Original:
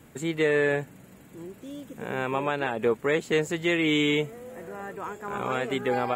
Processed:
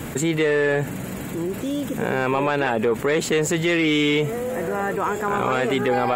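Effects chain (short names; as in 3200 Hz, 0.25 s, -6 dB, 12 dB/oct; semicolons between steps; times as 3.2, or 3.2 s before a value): in parallel at +2.5 dB: limiter -22.5 dBFS, peak gain reduction 9.5 dB; on the sum: soft clip -11.5 dBFS, distortion -21 dB; fast leveller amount 50%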